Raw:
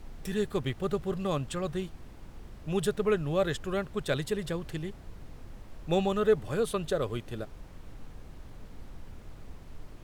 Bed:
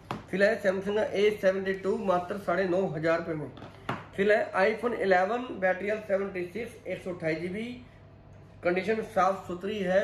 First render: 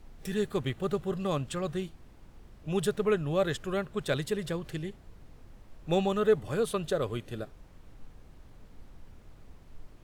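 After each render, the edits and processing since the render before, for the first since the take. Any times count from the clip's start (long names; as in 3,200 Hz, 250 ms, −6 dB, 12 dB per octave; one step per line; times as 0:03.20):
noise reduction from a noise print 6 dB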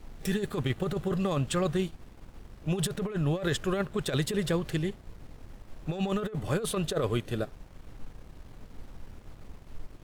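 leveller curve on the samples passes 1
compressor whose output falls as the input rises −27 dBFS, ratio −0.5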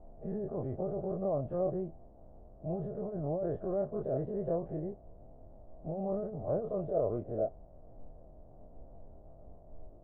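every bin's largest magnitude spread in time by 60 ms
transistor ladder low-pass 700 Hz, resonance 75%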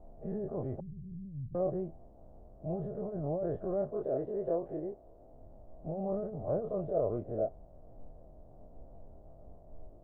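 0:00.80–0:01.55: inverse Chebyshev low-pass filter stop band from 780 Hz, stop band 70 dB
0:03.91–0:05.33: low shelf with overshoot 240 Hz −6.5 dB, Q 1.5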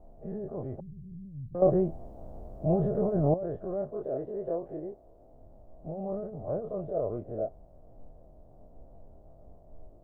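0:01.62–0:03.34: clip gain +10.5 dB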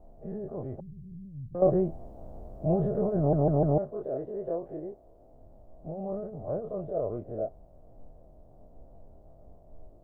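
0:03.18: stutter in place 0.15 s, 4 plays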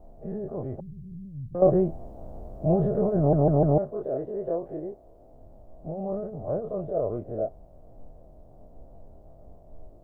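level +3.5 dB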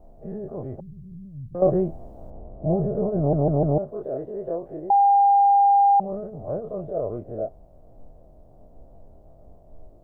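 0:00.93–0:01.47: flat-topped bell 910 Hz +10 dB 1.2 octaves
0:02.30–0:03.88: low-pass filter 1,100 Hz
0:04.90–0:06.00: beep over 802 Hz −13 dBFS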